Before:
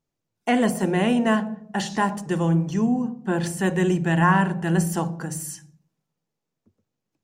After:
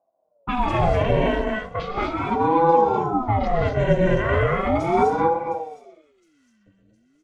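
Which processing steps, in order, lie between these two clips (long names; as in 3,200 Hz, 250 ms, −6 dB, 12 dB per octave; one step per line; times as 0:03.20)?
running median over 3 samples
low-pass that shuts in the quiet parts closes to 590 Hz, open at −15.5 dBFS
phase shifter 0.39 Hz, delay 4.3 ms, feedback 27%
high-frequency loss of the air 260 metres
notch filter 1,100 Hz, Q 5
delay with a high-pass on its return 712 ms, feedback 46%, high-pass 5,000 Hz, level −15 dB
brickwall limiter −14.5 dBFS, peak gain reduction 6 dB
bass and treble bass +10 dB, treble +9 dB
comb filter 2.4 ms, depth 90%
reverb whose tail is shaped and stops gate 280 ms rising, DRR −2 dB
ring modulator whose carrier an LFO sweeps 430 Hz, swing 55%, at 0.37 Hz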